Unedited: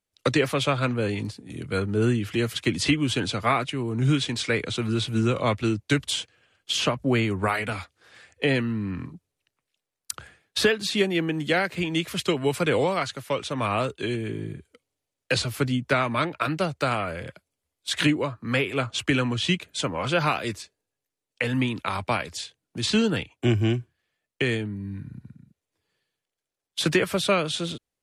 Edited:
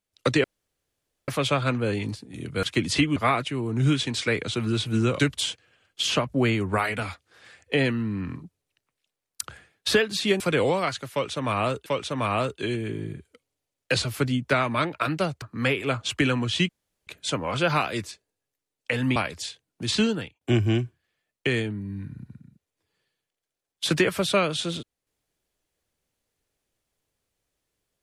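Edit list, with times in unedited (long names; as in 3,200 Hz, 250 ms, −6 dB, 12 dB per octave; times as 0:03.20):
0:00.44: splice in room tone 0.84 s
0:01.79–0:02.53: remove
0:03.06–0:03.38: remove
0:05.41–0:05.89: remove
0:11.10–0:12.54: remove
0:13.26–0:14.00: repeat, 2 plays
0:16.82–0:18.31: remove
0:19.58: splice in room tone 0.38 s
0:21.67–0:22.11: remove
0:22.94–0:23.36: fade out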